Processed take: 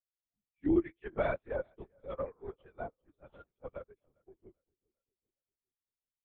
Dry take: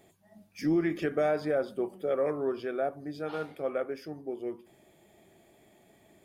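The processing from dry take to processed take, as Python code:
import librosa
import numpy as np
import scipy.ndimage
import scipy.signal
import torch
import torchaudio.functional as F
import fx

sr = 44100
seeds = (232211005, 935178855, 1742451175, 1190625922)

y = fx.bin_expand(x, sr, power=1.5)
y = fx.highpass(y, sr, hz=360.0, slope=12, at=(0.84, 3.0), fade=0.02)
y = fx.echo_feedback(y, sr, ms=400, feedback_pct=43, wet_db=-13.5)
y = fx.lpc_vocoder(y, sr, seeds[0], excitation='whisper', order=10)
y = fx.upward_expand(y, sr, threshold_db=-47.0, expansion=2.5)
y = F.gain(torch.from_numpy(y), 2.0).numpy()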